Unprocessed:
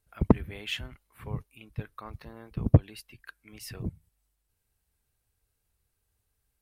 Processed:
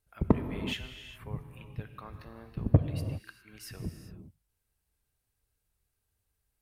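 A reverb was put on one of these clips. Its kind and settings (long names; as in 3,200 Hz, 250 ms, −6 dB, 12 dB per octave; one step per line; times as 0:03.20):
reverb whose tail is shaped and stops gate 430 ms flat, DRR 7 dB
level −3.5 dB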